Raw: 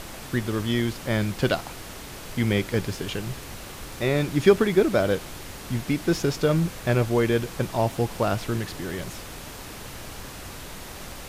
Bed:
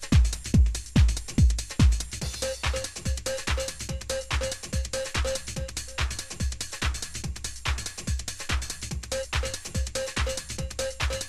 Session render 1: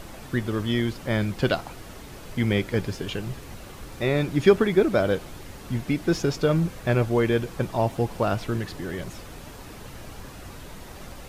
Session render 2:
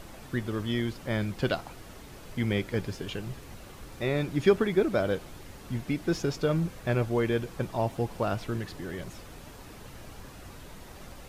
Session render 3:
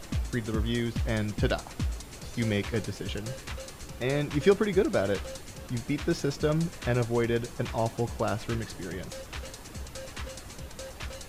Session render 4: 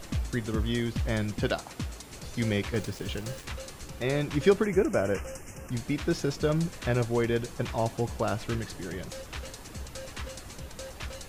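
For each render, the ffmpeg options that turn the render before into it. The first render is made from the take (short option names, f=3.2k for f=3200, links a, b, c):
-af "afftdn=nr=7:nf=-40"
-af "volume=-5dB"
-filter_complex "[1:a]volume=-11.5dB[a];[0:a][a]amix=inputs=2:normalize=0"
-filter_complex "[0:a]asettb=1/sr,asplit=3[a][b][c];[a]atrim=end=1.394[d];[b]atrim=start=1.39:end=2.11,asetpts=PTS-STARTPTS,afade=t=in:d=0.004:c=qsin,afade=t=out:st=0.716:d=0.004:c=qsin,highpass=f=130:p=1[e];[c]atrim=start=2.106[f];[d][e]acrossfade=d=0.004:c1=hsin:c2=qsin[g];[g][f]acrossfade=d=0.004:c1=qsin:c2=hsin,asettb=1/sr,asplit=3[h][i][j];[h]atrim=end=2.744[k];[i]atrim=start=2.74:end=3.45,asetpts=PTS-STARTPTS,afade=t=in:d=0.004:c=qsin,afade=t=out:st=0.706:d=0.004:c=qsin,aeval=exprs='val(0)*gte(abs(val(0)),0.00708)':c=same[l];[j]atrim=start=3.446[m];[k][l]acrossfade=d=0.004:c1=hsin:c2=qsin[n];[n][m]acrossfade=d=0.004:c1=qsin:c2=hsin,asplit=3[o][p][q];[o]afade=t=out:st=4.63:d=0.02[r];[p]asuperstop=centerf=3900:order=8:qfactor=1.7,afade=t=in:st=4.63:d=0.02,afade=t=out:st=5.7:d=0.02[s];[q]afade=t=in:st=5.7:d=0.02[t];[r][s][t]amix=inputs=3:normalize=0"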